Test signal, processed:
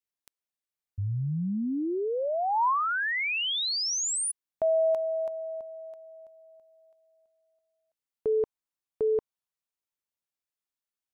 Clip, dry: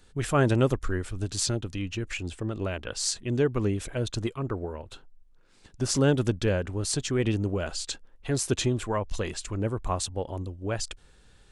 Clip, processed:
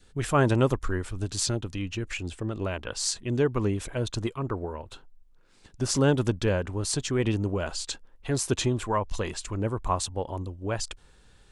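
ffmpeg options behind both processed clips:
ffmpeg -i in.wav -af "adynamicequalizer=threshold=0.00501:dfrequency=980:dqfactor=2.9:tfrequency=980:tqfactor=2.9:attack=5:release=100:ratio=0.375:range=3:mode=boostabove:tftype=bell" out.wav

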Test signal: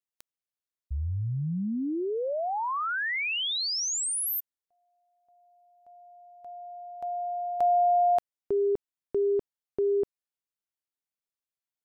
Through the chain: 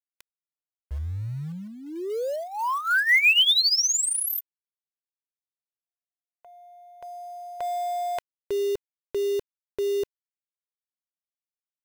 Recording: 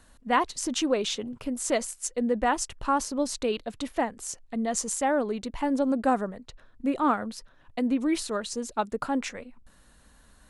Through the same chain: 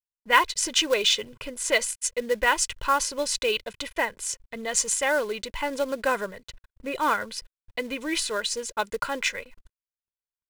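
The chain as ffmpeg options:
ffmpeg -i in.wav -filter_complex "[0:a]agate=range=-56dB:threshold=-50dB:ratio=16:release=22:detection=rms,equalizer=frequency=2200:width=0.77:gain=8,aecho=1:1:2:0.65,asplit=2[link_01][link_02];[link_02]acrusher=bits=3:mode=log:mix=0:aa=0.000001,volume=-6.5dB[link_03];[link_01][link_03]amix=inputs=2:normalize=0,adynamicequalizer=threshold=0.0224:dfrequency=1700:dqfactor=0.7:tfrequency=1700:tqfactor=0.7:attack=5:release=100:ratio=0.375:range=3.5:mode=boostabove:tftype=highshelf,volume=-6.5dB" out.wav

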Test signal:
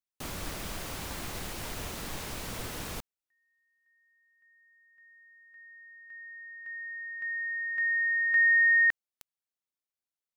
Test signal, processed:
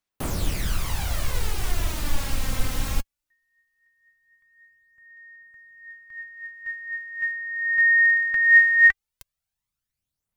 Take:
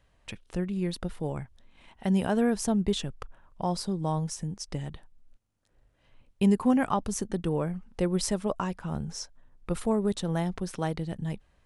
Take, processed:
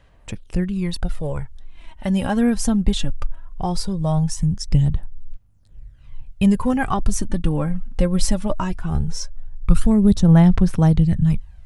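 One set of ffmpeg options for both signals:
ffmpeg -i in.wav -af "aphaser=in_gain=1:out_gain=1:delay=3.8:decay=0.54:speed=0.19:type=sinusoidal,asubboost=boost=5.5:cutoff=150,volume=5dB" out.wav

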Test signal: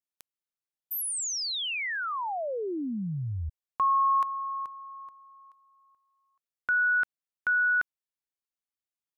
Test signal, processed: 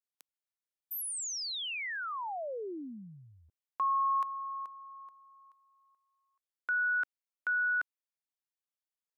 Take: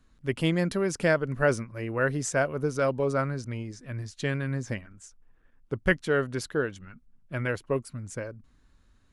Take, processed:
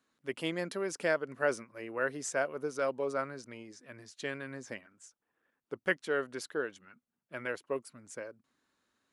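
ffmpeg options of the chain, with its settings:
ffmpeg -i in.wav -af "highpass=320,volume=-5.5dB" out.wav

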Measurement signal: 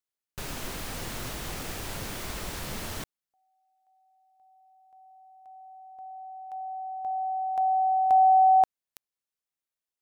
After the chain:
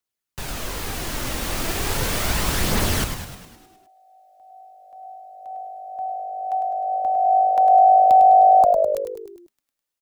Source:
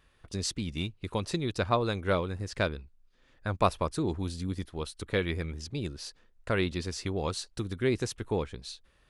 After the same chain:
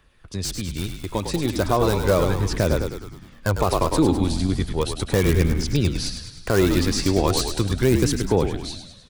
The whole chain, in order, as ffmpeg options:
ffmpeg -i in.wav -filter_complex "[0:a]acrossover=split=110|1300|4600[link_01][link_02][link_03][link_04];[link_03]aeval=exprs='(mod(53.1*val(0)+1,2)-1)/53.1':channel_layout=same[link_05];[link_01][link_02][link_05][link_04]amix=inputs=4:normalize=0,asplit=9[link_06][link_07][link_08][link_09][link_10][link_11][link_12][link_13][link_14];[link_07]adelay=103,afreqshift=-51,volume=-7.5dB[link_15];[link_08]adelay=206,afreqshift=-102,volume=-12.1dB[link_16];[link_09]adelay=309,afreqshift=-153,volume=-16.7dB[link_17];[link_10]adelay=412,afreqshift=-204,volume=-21.2dB[link_18];[link_11]adelay=515,afreqshift=-255,volume=-25.8dB[link_19];[link_12]adelay=618,afreqshift=-306,volume=-30.4dB[link_20];[link_13]adelay=721,afreqshift=-357,volume=-35dB[link_21];[link_14]adelay=824,afreqshift=-408,volume=-39.6dB[link_22];[link_06][link_15][link_16][link_17][link_18][link_19][link_20][link_21][link_22]amix=inputs=9:normalize=0,aphaser=in_gain=1:out_gain=1:delay=3.8:decay=0.27:speed=0.36:type=triangular,dynaudnorm=framelen=160:gausssize=21:maxgain=8dB,alimiter=level_in=10.5dB:limit=-1dB:release=50:level=0:latency=1,volume=-6dB" out.wav

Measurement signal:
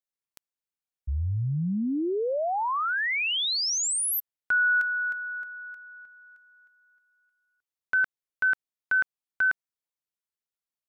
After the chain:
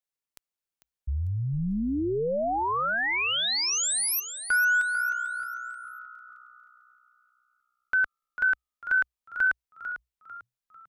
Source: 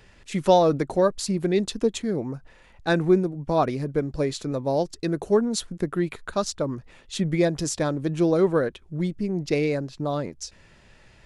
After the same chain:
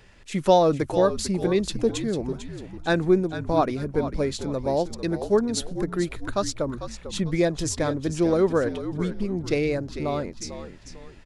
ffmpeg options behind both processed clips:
ffmpeg -i in.wav -filter_complex "[0:a]asubboost=boost=3.5:cutoff=51,asplit=2[link_01][link_02];[link_02]asplit=4[link_03][link_04][link_05][link_06];[link_03]adelay=447,afreqshift=-62,volume=-11dB[link_07];[link_04]adelay=894,afreqshift=-124,volume=-19.6dB[link_08];[link_05]adelay=1341,afreqshift=-186,volume=-28.3dB[link_09];[link_06]adelay=1788,afreqshift=-248,volume=-36.9dB[link_10];[link_07][link_08][link_09][link_10]amix=inputs=4:normalize=0[link_11];[link_01][link_11]amix=inputs=2:normalize=0" out.wav

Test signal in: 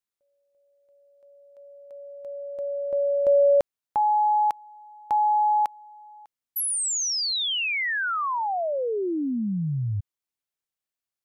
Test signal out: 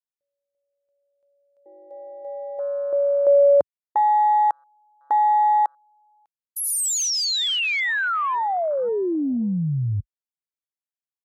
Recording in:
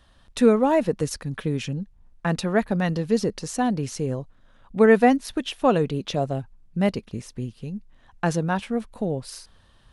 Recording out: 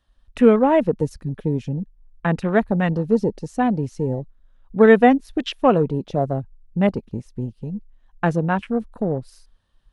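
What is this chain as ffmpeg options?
ffmpeg -i in.wav -af "afwtdn=0.02,volume=3.5dB" out.wav

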